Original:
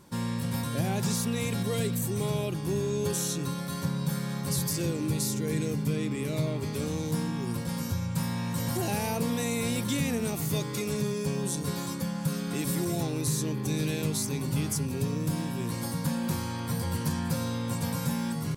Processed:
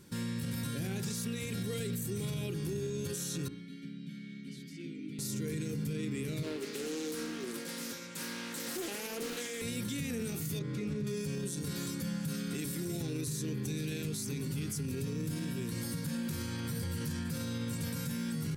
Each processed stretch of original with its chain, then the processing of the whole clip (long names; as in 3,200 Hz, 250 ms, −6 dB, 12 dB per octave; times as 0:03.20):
0:03.48–0:05.19: formant filter i + parametric band 960 Hz −6 dB 0.37 octaves + comb filter 5 ms, depth 52%
0:06.43–0:09.62: high-pass filter 280 Hz 24 dB per octave + highs frequency-modulated by the lows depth 0.36 ms
0:10.59–0:11.07: low-pass filter 1,100 Hz 6 dB per octave + highs frequency-modulated by the lows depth 0.12 ms
whole clip: flat-topped bell 810 Hz −10.5 dB 1.2 octaves; hum removal 59.54 Hz, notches 34; brickwall limiter −28.5 dBFS